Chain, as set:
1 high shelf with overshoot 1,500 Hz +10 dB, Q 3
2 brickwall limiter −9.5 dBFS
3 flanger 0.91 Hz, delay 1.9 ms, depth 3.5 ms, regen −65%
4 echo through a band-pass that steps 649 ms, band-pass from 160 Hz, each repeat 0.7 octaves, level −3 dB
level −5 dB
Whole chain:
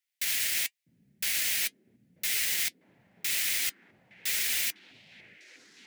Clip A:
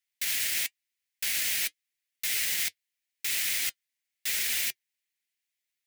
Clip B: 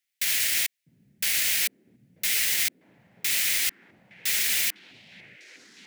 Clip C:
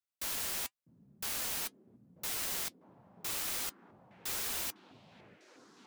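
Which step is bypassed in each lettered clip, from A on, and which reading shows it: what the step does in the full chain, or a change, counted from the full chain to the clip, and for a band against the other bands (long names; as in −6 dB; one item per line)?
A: 4, echo-to-direct ratio −13.0 dB to none audible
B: 3, change in integrated loudness +4.5 LU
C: 1, 2 kHz band −14.5 dB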